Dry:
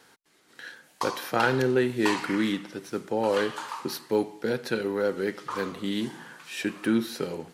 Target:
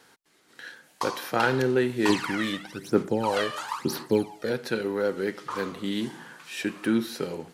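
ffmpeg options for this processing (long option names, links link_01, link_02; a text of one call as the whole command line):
ffmpeg -i in.wav -filter_complex "[0:a]asplit=3[link_01][link_02][link_03];[link_01]afade=type=out:start_time=2.08:duration=0.02[link_04];[link_02]aphaser=in_gain=1:out_gain=1:delay=1.7:decay=0.7:speed=1:type=sinusoidal,afade=type=in:start_time=2.08:duration=0.02,afade=type=out:start_time=4.49:duration=0.02[link_05];[link_03]afade=type=in:start_time=4.49:duration=0.02[link_06];[link_04][link_05][link_06]amix=inputs=3:normalize=0" out.wav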